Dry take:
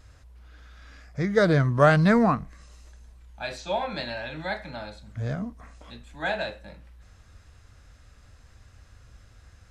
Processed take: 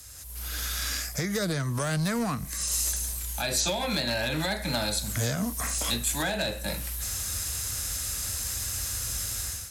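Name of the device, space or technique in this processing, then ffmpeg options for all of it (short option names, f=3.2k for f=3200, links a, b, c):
FM broadcast chain: -filter_complex "[0:a]highpass=f=41:w=0.5412,highpass=f=41:w=1.3066,dynaudnorm=f=140:g=5:m=15dB,acrossover=split=150|410|1700[a][b][c][d];[a]acompressor=threshold=-30dB:ratio=4[e];[b]acompressor=threshold=-28dB:ratio=4[f];[c]acompressor=threshold=-30dB:ratio=4[g];[d]acompressor=threshold=-39dB:ratio=4[h];[e][f][g][h]amix=inputs=4:normalize=0,aemphasis=mode=production:type=75fm,alimiter=limit=-19dB:level=0:latency=1:release=187,asoftclip=type=hard:threshold=-22.5dB,lowpass=f=15k:w=0.5412,lowpass=f=15k:w=1.3066,aemphasis=mode=production:type=75fm"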